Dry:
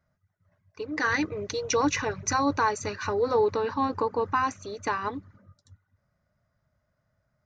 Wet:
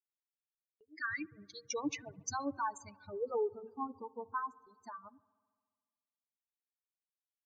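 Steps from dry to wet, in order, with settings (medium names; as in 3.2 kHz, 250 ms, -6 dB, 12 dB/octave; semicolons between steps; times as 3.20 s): expander on every frequency bin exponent 3; high-pass 110 Hz; spectral gate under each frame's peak -25 dB strong; gate with hold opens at -55 dBFS; on a send: feedback echo behind a low-pass 70 ms, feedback 75%, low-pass 1.1 kHz, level -23 dB; on the sum: trim -7.5 dB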